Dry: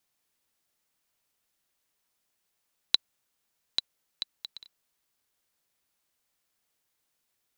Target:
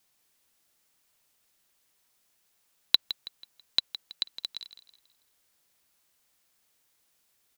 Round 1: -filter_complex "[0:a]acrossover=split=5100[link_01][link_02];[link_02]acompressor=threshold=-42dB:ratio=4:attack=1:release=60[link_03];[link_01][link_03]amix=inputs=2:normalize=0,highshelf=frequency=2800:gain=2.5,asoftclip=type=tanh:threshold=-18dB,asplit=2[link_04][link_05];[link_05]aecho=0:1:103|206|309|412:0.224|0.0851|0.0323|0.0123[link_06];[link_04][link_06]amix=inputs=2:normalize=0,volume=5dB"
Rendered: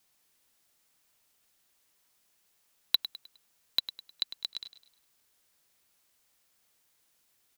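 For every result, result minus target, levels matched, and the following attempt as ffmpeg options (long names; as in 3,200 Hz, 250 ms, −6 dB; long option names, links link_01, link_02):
echo 60 ms early; soft clipping: distortion +9 dB
-filter_complex "[0:a]acrossover=split=5100[link_01][link_02];[link_02]acompressor=threshold=-42dB:ratio=4:attack=1:release=60[link_03];[link_01][link_03]amix=inputs=2:normalize=0,highshelf=frequency=2800:gain=2.5,asoftclip=type=tanh:threshold=-18dB,asplit=2[link_04][link_05];[link_05]aecho=0:1:163|326|489|652:0.224|0.0851|0.0323|0.0123[link_06];[link_04][link_06]amix=inputs=2:normalize=0,volume=5dB"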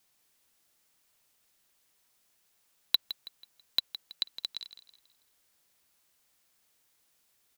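soft clipping: distortion +9 dB
-filter_complex "[0:a]acrossover=split=5100[link_01][link_02];[link_02]acompressor=threshold=-42dB:ratio=4:attack=1:release=60[link_03];[link_01][link_03]amix=inputs=2:normalize=0,highshelf=frequency=2800:gain=2.5,asoftclip=type=tanh:threshold=-9.5dB,asplit=2[link_04][link_05];[link_05]aecho=0:1:163|326|489|652:0.224|0.0851|0.0323|0.0123[link_06];[link_04][link_06]amix=inputs=2:normalize=0,volume=5dB"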